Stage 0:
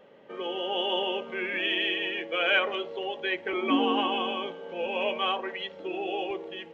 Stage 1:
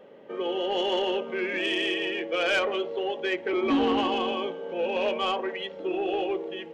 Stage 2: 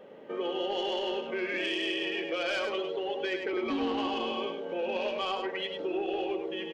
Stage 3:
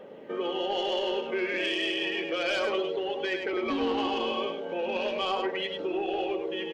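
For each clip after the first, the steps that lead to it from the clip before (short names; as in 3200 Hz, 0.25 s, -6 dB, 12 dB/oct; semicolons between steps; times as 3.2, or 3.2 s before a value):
bell 370 Hz +6 dB 2 oct; soft clip -18 dBFS, distortion -15 dB
dynamic EQ 4700 Hz, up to +7 dB, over -52 dBFS, Q 2.5; compressor, threshold -30 dBFS, peak gain reduction 9 dB; on a send: echo 0.101 s -6 dB
phaser 0.37 Hz, delay 2.4 ms, feedback 21%; gain +2.5 dB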